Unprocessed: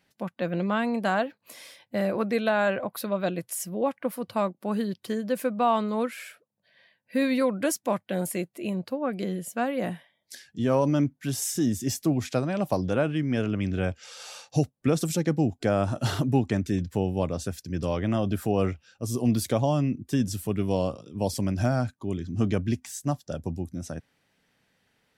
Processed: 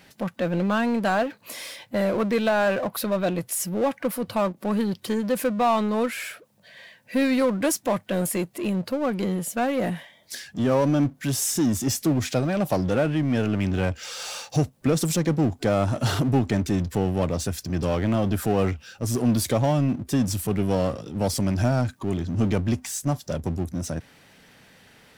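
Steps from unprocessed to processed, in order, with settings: power-law waveshaper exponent 0.7

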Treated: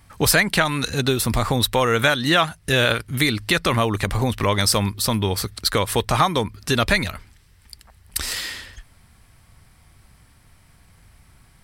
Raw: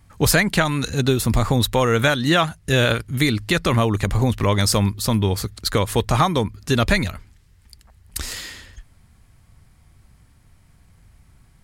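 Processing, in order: bass shelf 440 Hz -7 dB; in parallel at 0 dB: compression, threshold -29 dBFS, peak gain reduction 14 dB; on the sum: band-stop 6.8 kHz, Q 8.4

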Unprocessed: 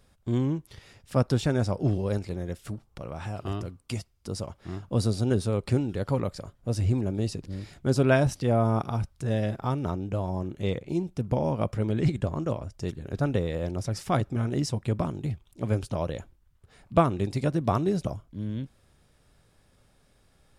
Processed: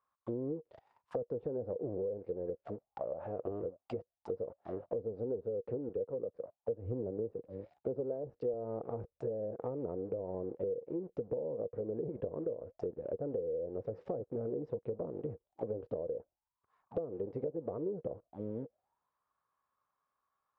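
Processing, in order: waveshaping leveller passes 3; auto-wah 470–1100 Hz, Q 11, down, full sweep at -19.5 dBFS; dynamic bell 420 Hz, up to -4 dB, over -46 dBFS, Q 6.8; compression 5:1, threshold -39 dBFS, peak gain reduction 16 dB; low-pass that closes with the level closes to 640 Hz, closed at -37.5 dBFS; bass shelf 92 Hz +8.5 dB; 5.89–8.54 s: three bands expanded up and down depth 100%; trim +4.5 dB

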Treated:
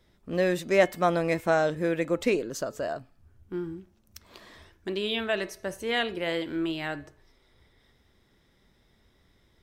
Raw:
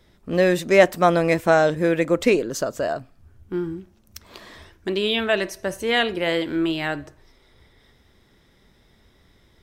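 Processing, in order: de-hum 430.2 Hz, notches 11; trim -7 dB

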